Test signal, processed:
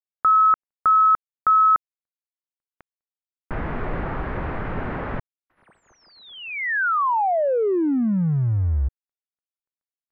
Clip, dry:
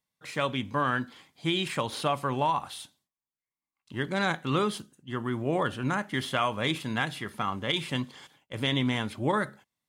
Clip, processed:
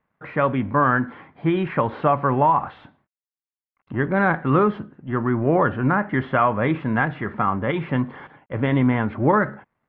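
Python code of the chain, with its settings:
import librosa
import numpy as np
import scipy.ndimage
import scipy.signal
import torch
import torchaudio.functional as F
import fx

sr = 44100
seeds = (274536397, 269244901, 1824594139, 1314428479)

y = fx.law_mismatch(x, sr, coded='mu')
y = scipy.signal.sosfilt(scipy.signal.butter(4, 1800.0, 'lowpass', fs=sr, output='sos'), y)
y = y * librosa.db_to_amplitude(8.5)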